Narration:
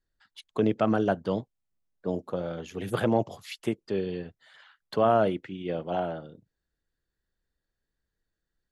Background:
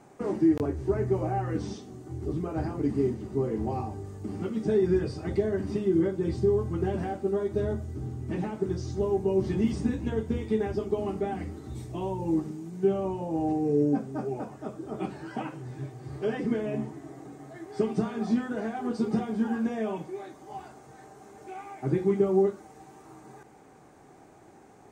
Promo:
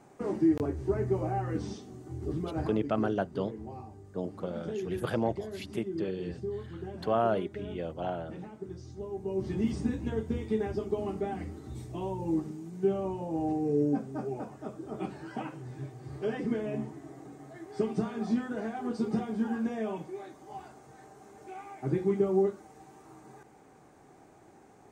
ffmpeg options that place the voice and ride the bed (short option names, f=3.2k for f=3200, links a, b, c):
-filter_complex "[0:a]adelay=2100,volume=-5dB[a];[1:a]volume=6.5dB,afade=t=out:st=2.6:d=0.26:silence=0.334965,afade=t=in:st=9.11:d=0.59:silence=0.354813[b];[a][b]amix=inputs=2:normalize=0"